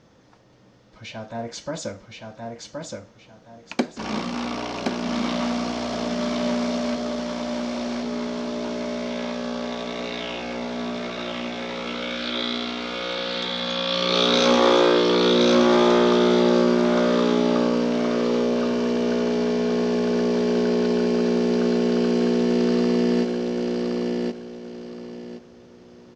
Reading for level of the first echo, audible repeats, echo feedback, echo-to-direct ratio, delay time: -3.5 dB, 3, 26%, -3.0 dB, 1071 ms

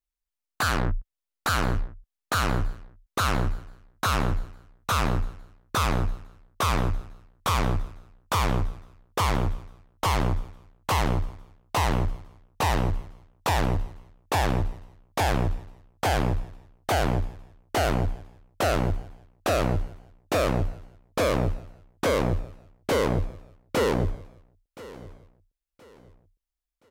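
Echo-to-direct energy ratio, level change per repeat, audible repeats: -18.0 dB, -10.0 dB, 2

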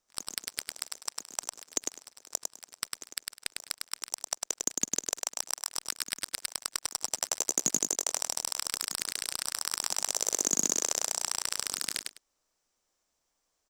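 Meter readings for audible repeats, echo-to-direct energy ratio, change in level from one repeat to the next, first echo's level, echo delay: 2, -3.5 dB, -15.5 dB, -3.5 dB, 102 ms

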